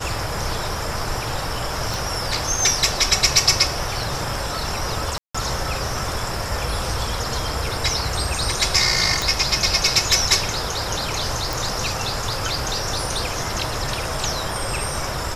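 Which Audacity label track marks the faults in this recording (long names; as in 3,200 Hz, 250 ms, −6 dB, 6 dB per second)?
1.940000	1.940000	click
5.180000	5.340000	drop-out 165 ms
9.220000	9.220000	click
11.530000	11.530000	click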